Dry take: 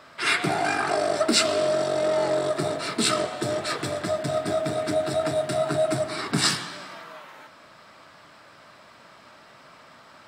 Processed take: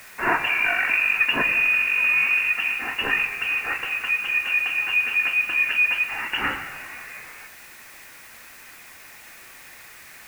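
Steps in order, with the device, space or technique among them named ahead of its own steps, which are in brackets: scrambled radio voice (band-pass 340–3100 Hz; frequency inversion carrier 3.1 kHz; white noise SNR 23 dB); trim +3.5 dB

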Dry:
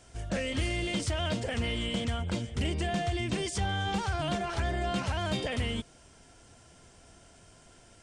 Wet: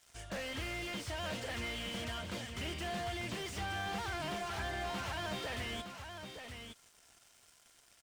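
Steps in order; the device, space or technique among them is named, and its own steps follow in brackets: early transistor amplifier (crossover distortion -56.5 dBFS; slew-rate limiter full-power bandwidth 20 Hz); tilt shelf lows -7.5 dB, about 750 Hz; delay 916 ms -7.5 dB; trim -5 dB

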